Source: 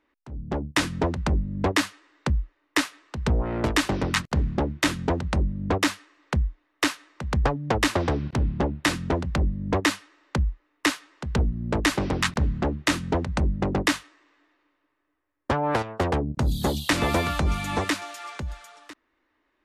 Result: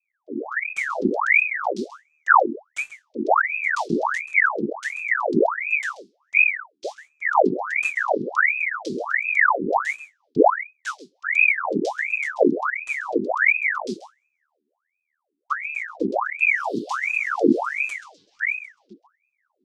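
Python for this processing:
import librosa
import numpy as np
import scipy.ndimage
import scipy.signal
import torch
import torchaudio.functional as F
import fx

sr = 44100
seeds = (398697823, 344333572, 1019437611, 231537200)

p1 = fx.octave_divider(x, sr, octaves=2, level_db=-2.0)
p2 = fx.rotary_switch(p1, sr, hz=0.7, then_hz=6.3, switch_at_s=4.48)
p3 = fx.env_lowpass(p2, sr, base_hz=2900.0, full_db=-22.0)
p4 = fx.rider(p3, sr, range_db=4, speed_s=2.0)
p5 = scipy.signal.sosfilt(scipy.signal.ellip(3, 1.0, 40, [120.0, 4600.0], 'bandstop', fs=sr, output='sos'), p4)
p6 = fx.spacing_loss(p5, sr, db_at_10k=23)
p7 = p6 + fx.echo_single(p6, sr, ms=133, db=-14.5, dry=0)
p8 = fx.ring_lfo(p7, sr, carrier_hz=1400.0, swing_pct=80, hz=1.4)
y = F.gain(torch.from_numpy(p8), 8.5).numpy()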